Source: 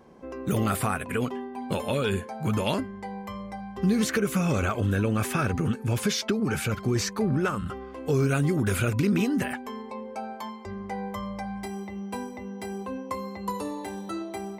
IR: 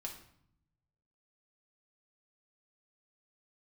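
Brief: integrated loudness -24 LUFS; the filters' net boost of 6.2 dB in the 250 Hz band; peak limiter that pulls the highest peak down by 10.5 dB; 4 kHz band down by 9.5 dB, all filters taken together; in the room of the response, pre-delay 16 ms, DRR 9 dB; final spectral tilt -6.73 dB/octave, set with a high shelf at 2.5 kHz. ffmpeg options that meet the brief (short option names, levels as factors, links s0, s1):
-filter_complex "[0:a]equalizer=f=250:t=o:g=8,highshelf=f=2500:g=-9,equalizer=f=4000:t=o:g=-4.5,alimiter=limit=0.1:level=0:latency=1,asplit=2[s0][s1];[1:a]atrim=start_sample=2205,adelay=16[s2];[s1][s2]afir=irnorm=-1:irlink=0,volume=0.422[s3];[s0][s3]amix=inputs=2:normalize=0,volume=1.68"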